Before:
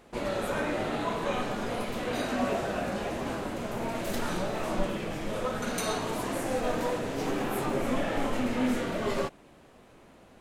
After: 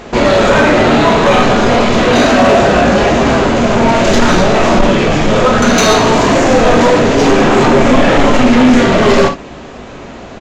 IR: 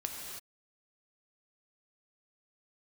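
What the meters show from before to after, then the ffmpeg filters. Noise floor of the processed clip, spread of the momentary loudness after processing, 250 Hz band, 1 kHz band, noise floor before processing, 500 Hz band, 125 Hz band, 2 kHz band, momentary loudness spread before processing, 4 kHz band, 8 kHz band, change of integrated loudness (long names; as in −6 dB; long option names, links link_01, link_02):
−30 dBFS, 3 LU, +22.0 dB, +22.0 dB, −56 dBFS, +22.0 dB, +22.5 dB, +22.5 dB, 4 LU, +23.0 dB, +20.0 dB, +22.0 dB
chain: -filter_complex "[1:a]atrim=start_sample=2205,atrim=end_sample=3087[link_01];[0:a][link_01]afir=irnorm=-1:irlink=0,apsyclip=22.5dB,aresample=16000,aresample=44100,acontrast=60,volume=-2.5dB"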